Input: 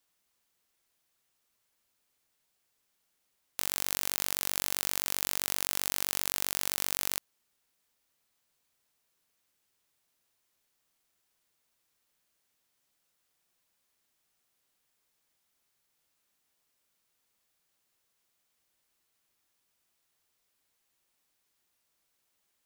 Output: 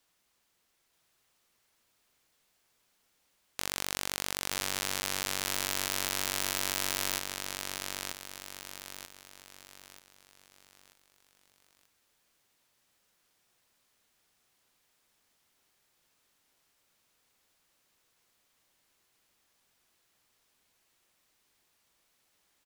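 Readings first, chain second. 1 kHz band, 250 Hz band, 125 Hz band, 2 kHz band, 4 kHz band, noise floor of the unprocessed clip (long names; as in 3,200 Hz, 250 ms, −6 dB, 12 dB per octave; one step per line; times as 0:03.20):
+4.0 dB, +4.5 dB, +4.0 dB, +4.0 dB, +3.0 dB, −78 dBFS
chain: high-shelf EQ 8,200 Hz −6 dB
in parallel at −10 dB: sine wavefolder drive 5 dB, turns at −7 dBFS
on the sum: repeating echo 935 ms, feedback 40%, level −4 dB
highs frequency-modulated by the lows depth 0.18 ms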